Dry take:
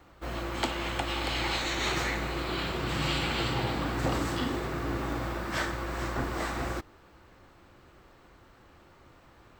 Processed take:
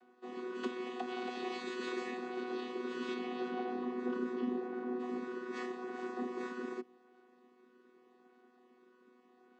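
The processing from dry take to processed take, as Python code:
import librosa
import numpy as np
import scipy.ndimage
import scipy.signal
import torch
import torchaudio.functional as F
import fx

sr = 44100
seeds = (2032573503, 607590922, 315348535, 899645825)

y = fx.chord_vocoder(x, sr, chord='bare fifth', root=59)
y = fx.lowpass(y, sr, hz=fx.line((3.13, 2800.0), (4.99, 1500.0)), slope=6, at=(3.13, 4.99), fade=0.02)
y = y * 10.0 ** (-6.0 / 20.0)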